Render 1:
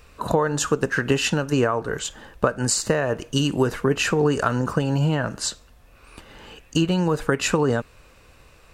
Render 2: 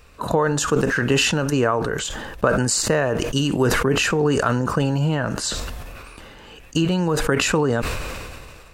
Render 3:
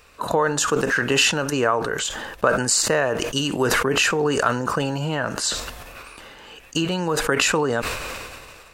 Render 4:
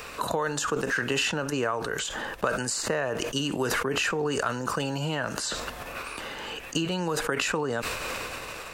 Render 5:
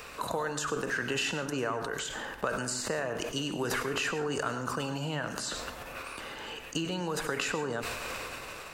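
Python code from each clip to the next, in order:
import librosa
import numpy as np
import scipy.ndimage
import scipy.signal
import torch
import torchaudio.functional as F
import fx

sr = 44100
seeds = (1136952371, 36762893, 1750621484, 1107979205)

y1 = fx.sustainer(x, sr, db_per_s=27.0)
y2 = fx.low_shelf(y1, sr, hz=290.0, db=-11.0)
y2 = y2 * librosa.db_to_amplitude(2.0)
y3 = fx.band_squash(y2, sr, depth_pct=70)
y3 = y3 * librosa.db_to_amplitude(-7.0)
y4 = fx.rev_plate(y3, sr, seeds[0], rt60_s=0.53, hf_ratio=0.65, predelay_ms=85, drr_db=9.0)
y4 = y4 * librosa.db_to_amplitude(-5.0)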